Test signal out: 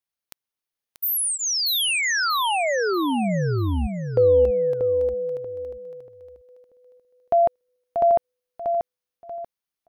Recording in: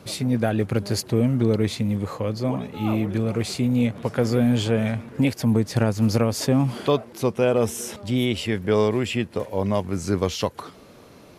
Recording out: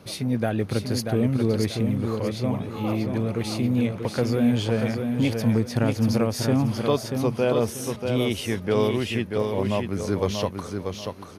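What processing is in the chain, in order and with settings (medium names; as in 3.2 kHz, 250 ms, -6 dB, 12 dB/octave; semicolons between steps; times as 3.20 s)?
band-stop 7.5 kHz, Q 5.7; on a send: feedback delay 636 ms, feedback 30%, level -5.5 dB; on the sum: trim -2.5 dB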